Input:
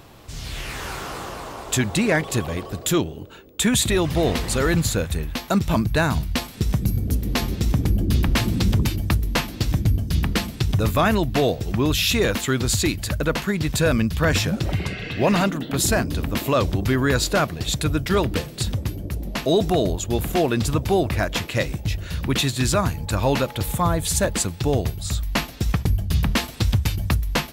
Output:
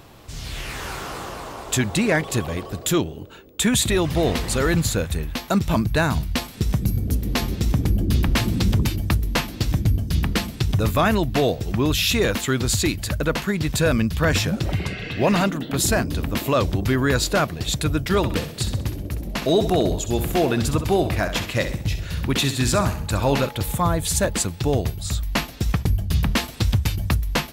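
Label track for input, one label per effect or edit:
18.170000	23.490000	feedback echo 65 ms, feedback 42%, level -10 dB

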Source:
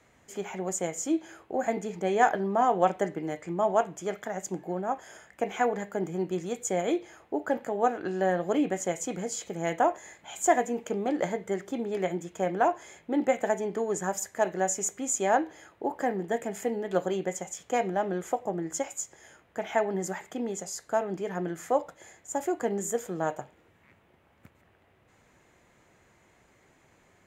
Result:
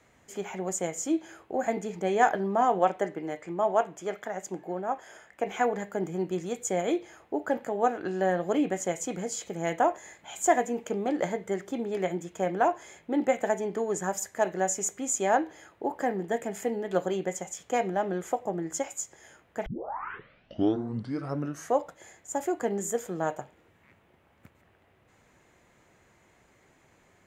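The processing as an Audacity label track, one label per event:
2.790000	5.470000	tone controls bass -6 dB, treble -4 dB
19.660000	19.660000	tape start 2.13 s

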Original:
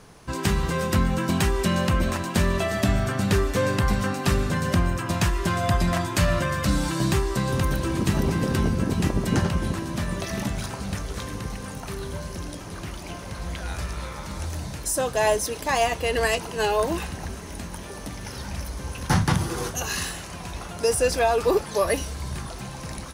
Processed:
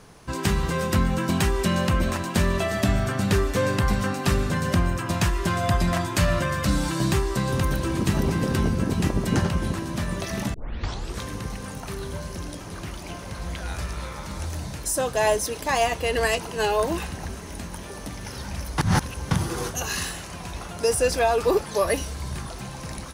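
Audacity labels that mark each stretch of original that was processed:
10.540000	10.540000	tape start 0.64 s
18.780000	19.310000	reverse

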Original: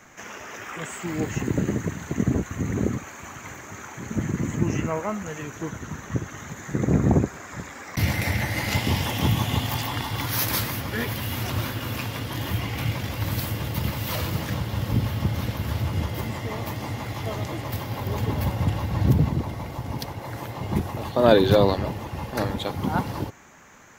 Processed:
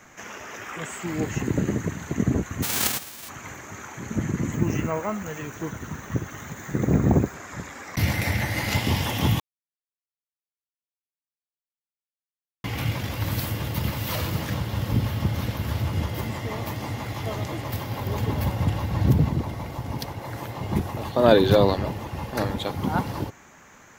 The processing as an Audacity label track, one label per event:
2.620000	3.280000	spectral whitening exponent 0.1
4.520000	7.340000	careless resampling rate divided by 2×, down none, up hold
9.400000	12.640000	mute

